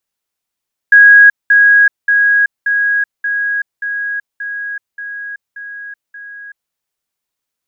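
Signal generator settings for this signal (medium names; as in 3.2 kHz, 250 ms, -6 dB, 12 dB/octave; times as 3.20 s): level ladder 1.65 kHz -1.5 dBFS, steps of -3 dB, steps 10, 0.38 s 0.20 s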